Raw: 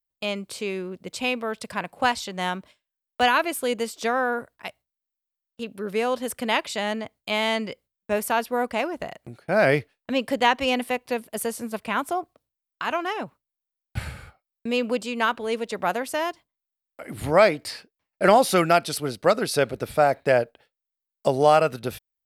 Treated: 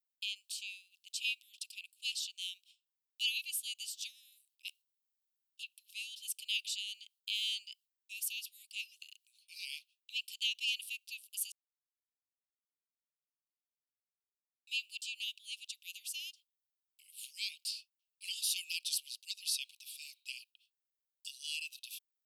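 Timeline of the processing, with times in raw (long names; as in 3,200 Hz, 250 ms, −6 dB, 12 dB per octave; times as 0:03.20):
0:04.67–0:05.62: tilt shelving filter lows −4.5 dB
0:11.52–0:14.67: silence
whole clip: Butterworth high-pass 2,600 Hz 96 dB per octave; level −4.5 dB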